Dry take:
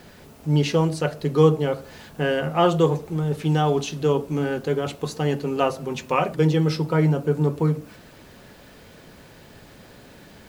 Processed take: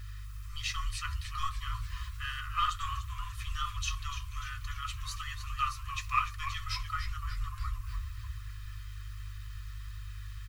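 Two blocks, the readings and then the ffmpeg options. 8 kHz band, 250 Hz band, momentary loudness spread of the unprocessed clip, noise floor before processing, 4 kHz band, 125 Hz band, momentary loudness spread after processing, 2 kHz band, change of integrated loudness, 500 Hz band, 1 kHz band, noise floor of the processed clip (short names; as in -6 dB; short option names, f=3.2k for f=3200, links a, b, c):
-4.0 dB, under -40 dB, 8 LU, -48 dBFS, -5.0 dB, -16.5 dB, 13 LU, -6.5 dB, -15.0 dB, under -40 dB, -8.0 dB, -43 dBFS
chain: -filter_complex "[0:a]asplit=2[a][b];[b]aeval=exprs='clip(val(0),-1,0.0944)':c=same,volume=-5dB[c];[a][c]amix=inputs=2:normalize=0,aecho=1:1:1.6:0.92,flanger=delay=1.8:depth=9.6:regen=-51:speed=1.3:shape=triangular,aeval=exprs='val(0)+0.0224*(sin(2*PI*50*n/s)+sin(2*PI*2*50*n/s)/2+sin(2*PI*3*50*n/s)/3+sin(2*PI*4*50*n/s)/4+sin(2*PI*5*50*n/s)/5)':c=same,asplit=8[d][e][f][g][h][i][j][k];[e]adelay=294,afreqshift=-110,volume=-10.5dB[l];[f]adelay=588,afreqshift=-220,volume=-15.4dB[m];[g]adelay=882,afreqshift=-330,volume=-20.3dB[n];[h]adelay=1176,afreqshift=-440,volume=-25.1dB[o];[i]adelay=1470,afreqshift=-550,volume=-30dB[p];[j]adelay=1764,afreqshift=-660,volume=-34.9dB[q];[k]adelay=2058,afreqshift=-770,volume=-39.8dB[r];[d][l][m][n][o][p][q][r]amix=inputs=8:normalize=0,afftfilt=real='re*(1-between(b*sr/4096,120,1000))':imag='im*(1-between(b*sr/4096,120,1000))':win_size=4096:overlap=0.75,volume=-7dB"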